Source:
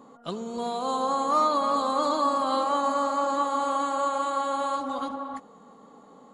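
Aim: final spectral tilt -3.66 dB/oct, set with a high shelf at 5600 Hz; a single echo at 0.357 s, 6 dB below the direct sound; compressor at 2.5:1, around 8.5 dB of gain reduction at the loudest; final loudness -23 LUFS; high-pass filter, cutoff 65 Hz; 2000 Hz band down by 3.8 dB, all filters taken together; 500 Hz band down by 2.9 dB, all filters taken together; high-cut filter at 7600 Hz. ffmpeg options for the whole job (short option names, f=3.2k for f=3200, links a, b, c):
-af "highpass=65,lowpass=7.6k,equalizer=f=500:t=o:g=-3,equalizer=f=2k:t=o:g=-6,highshelf=f=5.6k:g=5.5,acompressor=threshold=-35dB:ratio=2.5,aecho=1:1:357:0.501,volume=11.5dB"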